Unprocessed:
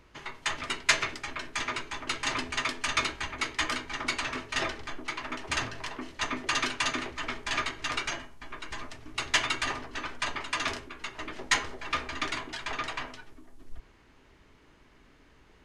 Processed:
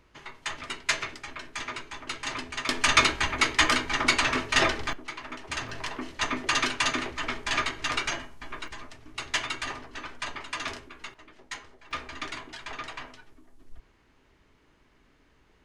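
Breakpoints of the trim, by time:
-3 dB
from 2.69 s +8 dB
from 4.93 s -3 dB
from 5.69 s +3 dB
from 8.68 s -3 dB
from 11.14 s -13.5 dB
from 11.91 s -4 dB

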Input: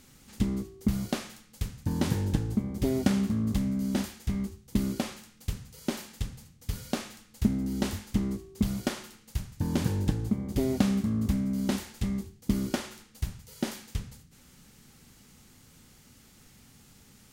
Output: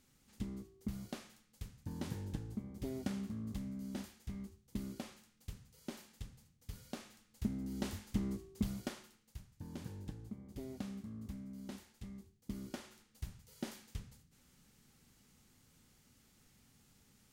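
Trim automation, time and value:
6.97 s -14.5 dB
8.45 s -7 dB
9.46 s -19 dB
12.16 s -19 dB
13.36 s -11.5 dB

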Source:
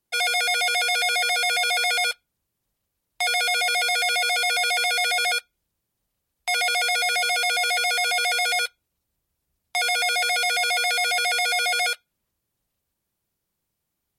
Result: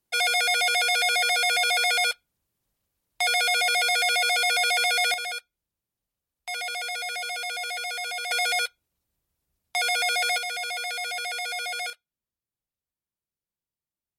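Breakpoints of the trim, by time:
-0.5 dB
from 5.14 s -9 dB
from 8.31 s -2 dB
from 10.38 s -8.5 dB
from 11.90 s -15.5 dB

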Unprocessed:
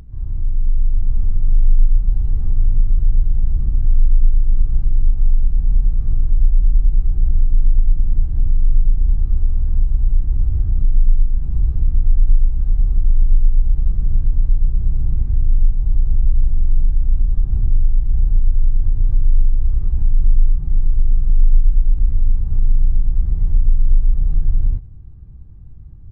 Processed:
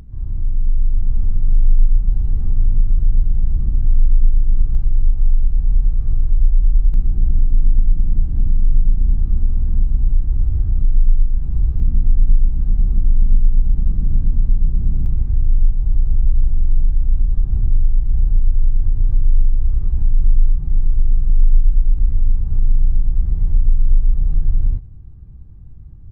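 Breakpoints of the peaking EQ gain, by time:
peaking EQ 220 Hz 0.83 oct
+3.5 dB
from 4.75 s -2.5 dB
from 6.94 s +8.5 dB
from 10.12 s +1.5 dB
from 11.80 s +10.5 dB
from 15.06 s +1 dB

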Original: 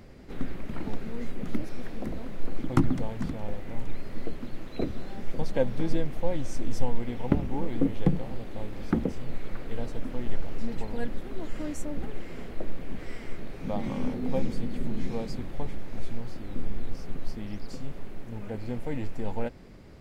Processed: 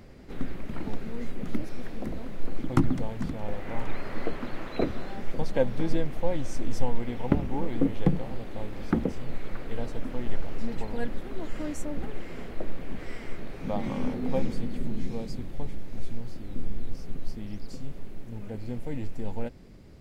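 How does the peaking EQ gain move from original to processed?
peaking EQ 1.2 kHz 2.9 oct
3.31 s 0 dB
3.80 s +11 dB
4.65 s +11 dB
5.44 s +2 dB
14.42 s +2 dB
15.10 s -5.5 dB

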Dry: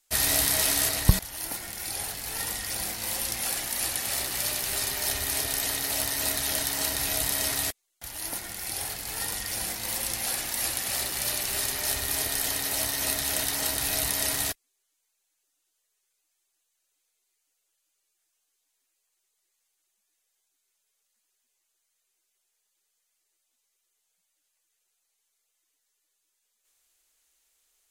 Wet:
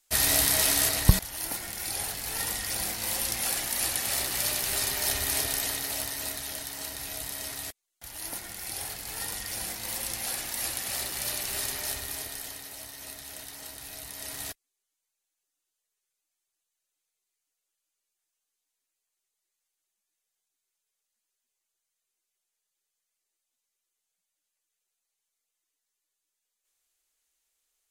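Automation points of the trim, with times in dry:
5.39 s +0.5 dB
6.59 s -9 dB
7.63 s -9 dB
8.16 s -3 dB
11.74 s -3 dB
12.77 s -14.5 dB
14.07 s -14.5 dB
14.51 s -7.5 dB

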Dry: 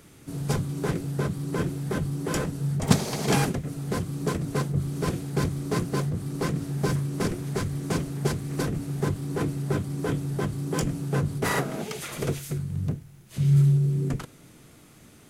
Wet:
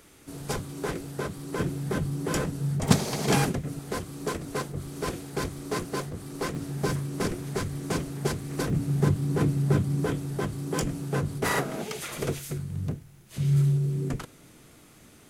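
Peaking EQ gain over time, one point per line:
peaking EQ 140 Hz 1.6 oct
-10 dB
from 1.60 s -1 dB
from 3.79 s -10.5 dB
from 6.55 s -4 dB
from 8.70 s +5 dB
from 10.06 s -3.5 dB

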